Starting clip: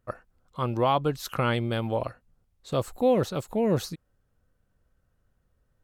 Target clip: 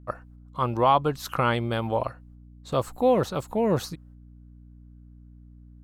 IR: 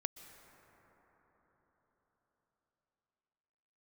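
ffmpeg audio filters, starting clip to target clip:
-af "equalizer=f=1000:w=1.3:g=6,agate=range=0.355:threshold=0.00126:ratio=16:detection=peak,aeval=exprs='val(0)+0.00447*(sin(2*PI*60*n/s)+sin(2*PI*2*60*n/s)/2+sin(2*PI*3*60*n/s)/3+sin(2*PI*4*60*n/s)/4+sin(2*PI*5*60*n/s)/5)':c=same"

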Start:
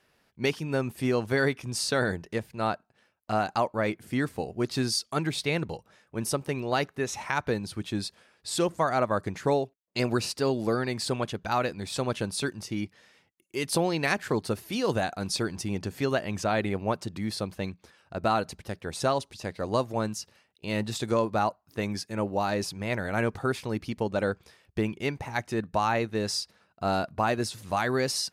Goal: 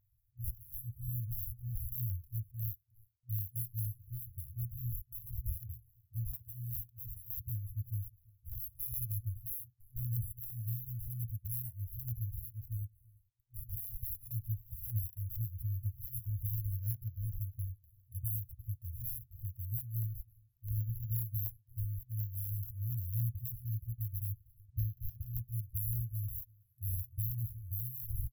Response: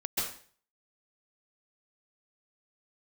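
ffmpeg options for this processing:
-filter_complex "[0:a]acrusher=samples=16:mix=1:aa=0.000001:lfo=1:lforange=9.6:lforate=0.25,asplit=2[s0][s1];[s1]adelay=340,highpass=300,lowpass=3400,asoftclip=type=hard:threshold=0.0891,volume=0.398[s2];[s0][s2]amix=inputs=2:normalize=0,afftfilt=real='re*(1-between(b*sr/4096,120,11000))':imag='im*(1-between(b*sr/4096,120,11000))':win_size=4096:overlap=0.75,volume=1.19"

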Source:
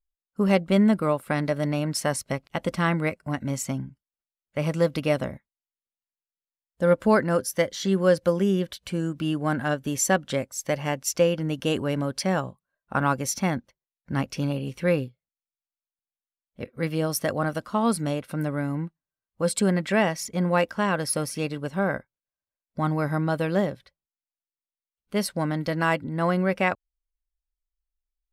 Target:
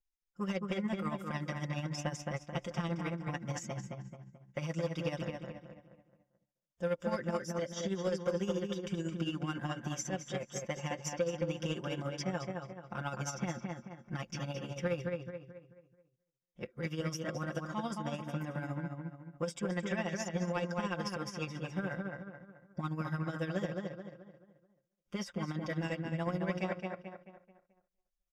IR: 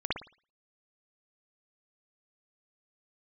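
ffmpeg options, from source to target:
-filter_complex "[0:a]acrossover=split=570|2600[s0][s1][s2];[s0]acompressor=threshold=0.0282:ratio=4[s3];[s1]acompressor=threshold=0.0224:ratio=4[s4];[s2]acompressor=threshold=0.01:ratio=4[s5];[s3][s4][s5]amix=inputs=3:normalize=0,aecho=1:1:5.7:1,asplit=2[s6][s7];[s7]adelay=218,lowpass=f=2800:p=1,volume=0.631,asplit=2[s8][s9];[s9]adelay=218,lowpass=f=2800:p=1,volume=0.41,asplit=2[s10][s11];[s11]adelay=218,lowpass=f=2800:p=1,volume=0.41,asplit=2[s12][s13];[s13]adelay=218,lowpass=f=2800:p=1,volume=0.41,asplit=2[s14][s15];[s15]adelay=218,lowpass=f=2800:p=1,volume=0.41[s16];[s8][s10][s12][s14][s16]amix=inputs=5:normalize=0[s17];[s6][s17]amix=inputs=2:normalize=0,asoftclip=type=tanh:threshold=0.168,asuperstop=centerf=4200:order=20:qfactor=6.2,highshelf=f=8000:t=q:w=3:g=-7.5,asplit=2[s18][s19];[s19]aecho=0:1:248|496:0.1|0.028[s20];[s18][s20]amix=inputs=2:normalize=0,tremolo=f=14:d=0.61,volume=0.447"

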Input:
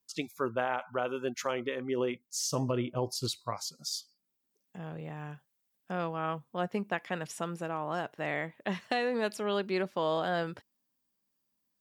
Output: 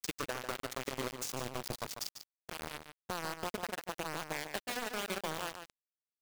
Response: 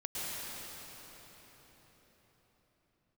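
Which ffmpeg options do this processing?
-filter_complex "[0:a]acompressor=threshold=0.00447:ratio=5,acrusher=bits=6:mix=0:aa=0.000001,atempo=1.9,asplit=2[s0][s1];[s1]adelay=145.8,volume=0.398,highshelf=f=4000:g=-3.28[s2];[s0][s2]amix=inputs=2:normalize=0,volume=2.82"

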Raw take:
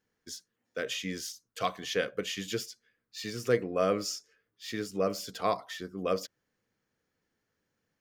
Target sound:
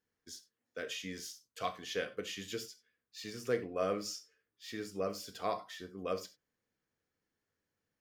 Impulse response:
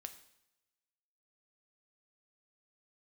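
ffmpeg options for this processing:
-filter_complex "[1:a]atrim=start_sample=2205,afade=t=out:st=0.19:d=0.01,atrim=end_sample=8820,asetrate=61740,aresample=44100[s0];[0:a][s0]afir=irnorm=-1:irlink=0,volume=1.19"

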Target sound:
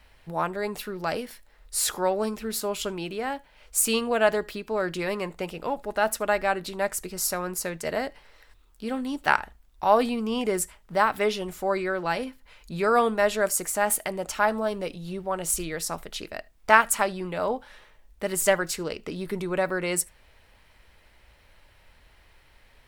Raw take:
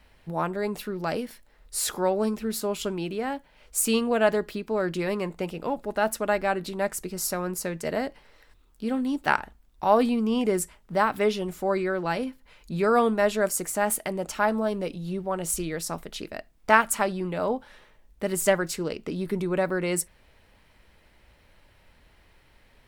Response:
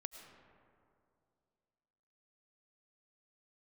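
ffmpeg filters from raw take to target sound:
-filter_complex "[0:a]equalizer=f=220:t=o:w=2.2:g=-6.5[s0];[1:a]atrim=start_sample=2205,atrim=end_sample=3528[s1];[s0][s1]afir=irnorm=-1:irlink=0,volume=2.24"

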